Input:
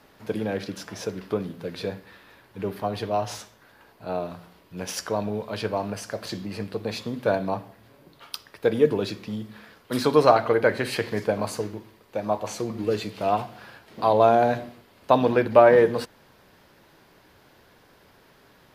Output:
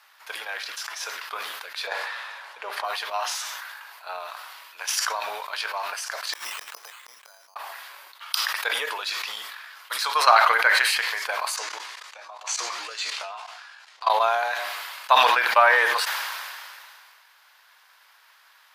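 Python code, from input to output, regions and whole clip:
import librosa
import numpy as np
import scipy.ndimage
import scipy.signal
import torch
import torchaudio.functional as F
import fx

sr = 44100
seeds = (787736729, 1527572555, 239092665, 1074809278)

y = fx.chain(x, sr, fx.lowpass(hz=8500.0, slope=12),
    fx.peak_eq(hz=570.0, db=11.0, octaves=1.3),
    fx.sustainer(db_per_s=80.0), at=(1.87, 2.84))
y = fx.chain(y, sr, fx.gate_flip(shuts_db=-22.0, range_db=-36),
    fx.resample_bad(factor=8, down='none', up='hold'), at=(6.33, 7.56))
y = fx.chain(y, sr, fx.doubler(ms=16.0, db=-6.5),
    fx.level_steps(step_db=18),
    fx.lowpass_res(hz=7000.0, q=1.7), at=(11.56, 14.1))
y = scipy.signal.sosfilt(scipy.signal.butter(4, 990.0, 'highpass', fs=sr, output='sos'), y)
y = fx.transient(y, sr, attack_db=5, sustain_db=-1)
y = fx.sustainer(y, sr, db_per_s=26.0)
y = F.gain(torch.from_numpy(y), 3.0).numpy()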